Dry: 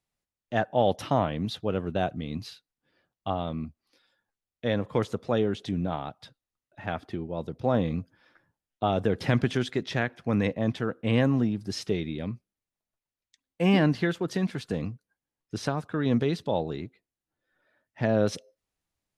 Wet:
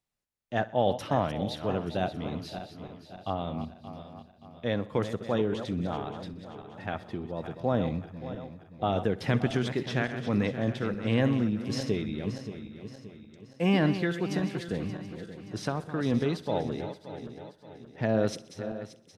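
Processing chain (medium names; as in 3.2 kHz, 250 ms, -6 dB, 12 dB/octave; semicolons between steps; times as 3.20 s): backward echo that repeats 288 ms, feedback 66%, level -10 dB; on a send: feedback delay 63 ms, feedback 57%, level -19.5 dB; on the sum: trim -2.5 dB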